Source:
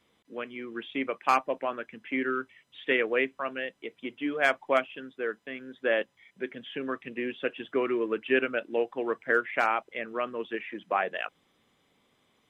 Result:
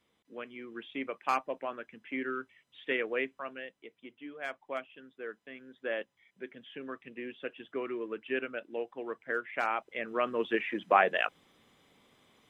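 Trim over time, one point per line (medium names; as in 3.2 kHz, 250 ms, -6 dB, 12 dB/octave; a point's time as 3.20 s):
3.26 s -6 dB
4.37 s -15 dB
5.41 s -8.5 dB
9.40 s -8.5 dB
10.48 s +4 dB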